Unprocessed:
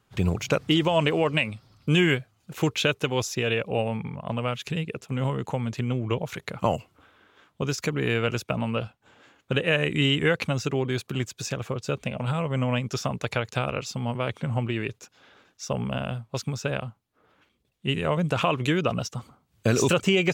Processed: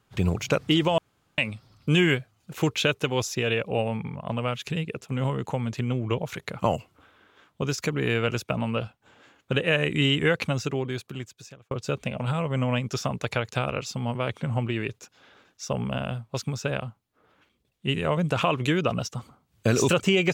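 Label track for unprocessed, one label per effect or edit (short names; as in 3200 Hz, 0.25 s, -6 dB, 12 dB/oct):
0.980000	1.380000	room tone
10.510000	11.710000	fade out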